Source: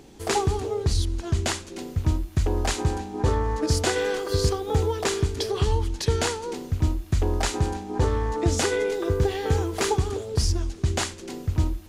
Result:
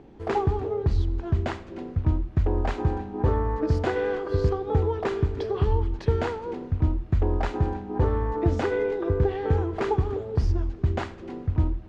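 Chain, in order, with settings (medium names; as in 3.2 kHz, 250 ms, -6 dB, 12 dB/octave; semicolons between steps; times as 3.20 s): Bessel low-pass 1.4 kHz, order 2; algorithmic reverb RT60 1.9 s, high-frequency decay 0.75×, pre-delay 25 ms, DRR 18 dB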